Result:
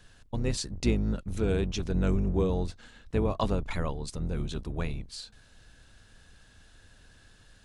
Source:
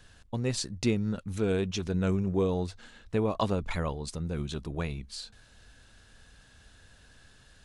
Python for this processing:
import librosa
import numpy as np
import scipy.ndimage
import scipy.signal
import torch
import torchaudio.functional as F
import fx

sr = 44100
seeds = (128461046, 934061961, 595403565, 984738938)

y = fx.octave_divider(x, sr, octaves=2, level_db=1.0)
y = y * librosa.db_to_amplitude(-1.0)